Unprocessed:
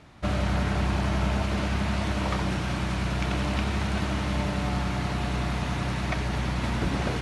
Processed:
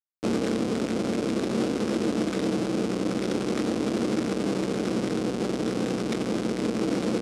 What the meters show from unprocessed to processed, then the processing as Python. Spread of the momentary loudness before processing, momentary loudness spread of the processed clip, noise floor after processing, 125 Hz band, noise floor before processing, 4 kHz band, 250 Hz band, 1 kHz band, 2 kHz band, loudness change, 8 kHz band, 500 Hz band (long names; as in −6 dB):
2 LU, 2 LU, −31 dBFS, −8.0 dB, −30 dBFS, −2.0 dB, +5.0 dB, −4.5 dB, −5.5 dB, +0.5 dB, +2.5 dB, +7.0 dB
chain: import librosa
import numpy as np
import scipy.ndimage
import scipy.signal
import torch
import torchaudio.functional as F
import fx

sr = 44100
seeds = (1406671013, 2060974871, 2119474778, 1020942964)

y = fx.lower_of_two(x, sr, delay_ms=0.54)
y = fx.schmitt(y, sr, flips_db=-32.0)
y = fx.doubler(y, sr, ms=22.0, db=-12.0)
y = fx.rider(y, sr, range_db=10, speed_s=0.5)
y = fx.cabinet(y, sr, low_hz=210.0, low_slope=12, high_hz=9700.0, hz=(220.0, 320.0, 470.0, 930.0, 1800.0, 5200.0), db=(9, 10, 8, -4, -5, 3))